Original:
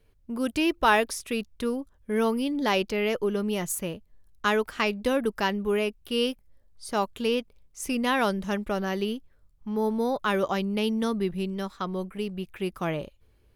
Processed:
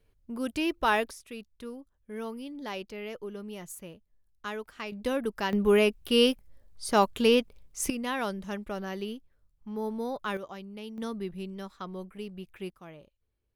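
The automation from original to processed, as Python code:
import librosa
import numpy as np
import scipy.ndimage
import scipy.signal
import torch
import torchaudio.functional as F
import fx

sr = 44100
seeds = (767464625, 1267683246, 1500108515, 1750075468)

y = fx.gain(x, sr, db=fx.steps((0.0, -4.5), (1.11, -12.5), (4.92, -4.5), (5.53, 4.0), (7.9, -7.0), (10.37, -15.0), (10.98, -8.0), (12.7, -18.5)))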